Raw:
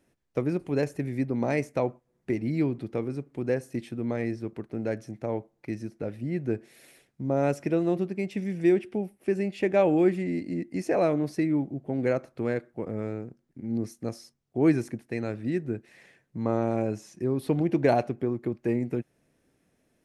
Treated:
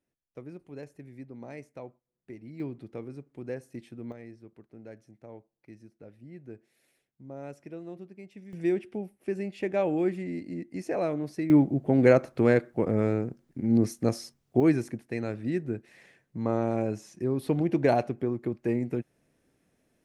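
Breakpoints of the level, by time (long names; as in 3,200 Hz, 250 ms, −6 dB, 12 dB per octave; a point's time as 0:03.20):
−16 dB
from 0:02.60 −9 dB
from 0:04.12 −16 dB
from 0:08.53 −5 dB
from 0:11.50 +7 dB
from 0:14.60 −1 dB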